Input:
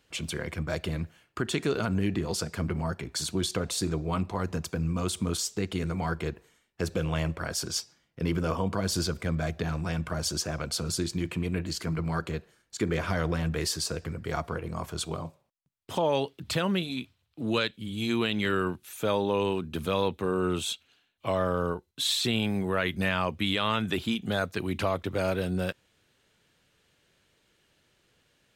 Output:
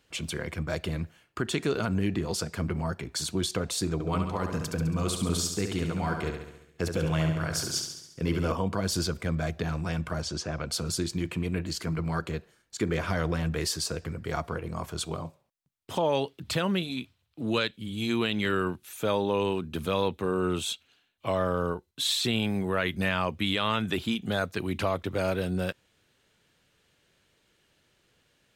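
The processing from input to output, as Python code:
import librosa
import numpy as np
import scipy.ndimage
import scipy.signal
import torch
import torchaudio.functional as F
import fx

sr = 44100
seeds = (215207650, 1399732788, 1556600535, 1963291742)

y = fx.echo_feedback(x, sr, ms=69, feedback_pct=58, wet_db=-6, at=(3.93, 8.52))
y = fx.air_absorb(y, sr, metres=91.0, at=(10.21, 10.68), fade=0.02)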